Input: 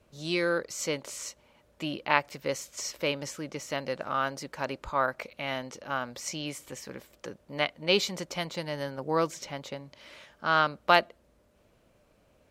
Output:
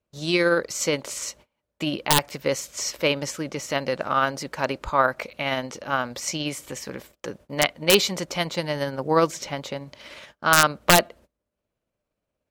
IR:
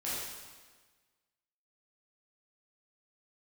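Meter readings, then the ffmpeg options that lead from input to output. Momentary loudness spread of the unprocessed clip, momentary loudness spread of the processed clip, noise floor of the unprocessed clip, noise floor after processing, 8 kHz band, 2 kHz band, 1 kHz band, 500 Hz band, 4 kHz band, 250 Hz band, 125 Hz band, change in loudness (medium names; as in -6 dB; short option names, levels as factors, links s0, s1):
17 LU, 17 LU, -65 dBFS, -83 dBFS, +11.0 dB, +6.0 dB, +5.5 dB, +6.5 dB, +7.5 dB, +7.5 dB, +8.5 dB, +7.0 dB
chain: -af "aeval=exprs='(mod(3.76*val(0)+1,2)-1)/3.76':c=same,tremolo=f=17:d=0.29,agate=range=0.0562:threshold=0.00178:ratio=16:detection=peak,volume=2.66"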